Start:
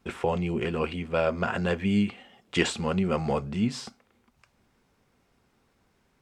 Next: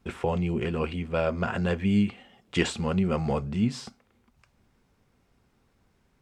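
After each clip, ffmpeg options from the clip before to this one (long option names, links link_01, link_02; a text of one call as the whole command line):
ffmpeg -i in.wav -af "lowshelf=frequency=170:gain=7.5,volume=-2dB" out.wav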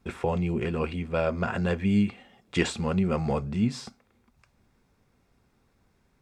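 ffmpeg -i in.wav -af "bandreject=frequency=3000:width=13" out.wav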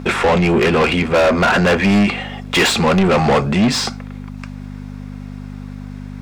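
ffmpeg -i in.wav -filter_complex "[0:a]aeval=exprs='val(0)+0.0112*(sin(2*PI*50*n/s)+sin(2*PI*2*50*n/s)/2+sin(2*PI*3*50*n/s)/3+sin(2*PI*4*50*n/s)/4+sin(2*PI*5*50*n/s)/5)':channel_layout=same,asplit=2[link_01][link_02];[link_02]highpass=frequency=720:poles=1,volume=31dB,asoftclip=type=tanh:threshold=-8dB[link_03];[link_01][link_03]amix=inputs=2:normalize=0,lowpass=frequency=4000:poles=1,volume=-6dB,volume=3dB" out.wav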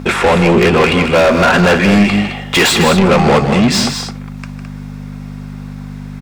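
ffmpeg -i in.wav -filter_complex "[0:a]highshelf=frequency=9900:gain=5.5,asplit=2[link_01][link_02];[link_02]aecho=0:1:154.5|212.8:0.316|0.355[link_03];[link_01][link_03]amix=inputs=2:normalize=0,volume=3dB" out.wav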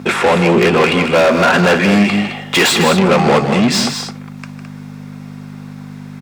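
ffmpeg -i in.wav -af "highpass=140,volume=-1dB" out.wav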